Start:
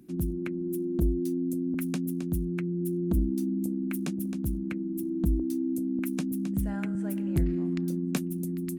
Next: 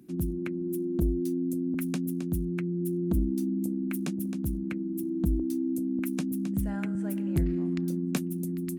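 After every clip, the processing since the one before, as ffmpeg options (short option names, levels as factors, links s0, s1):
-af "highpass=41"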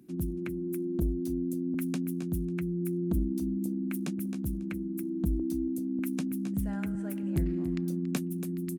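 -af "aecho=1:1:280:0.211,volume=0.75"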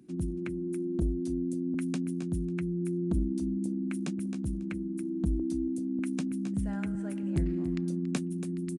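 -af "aresample=22050,aresample=44100"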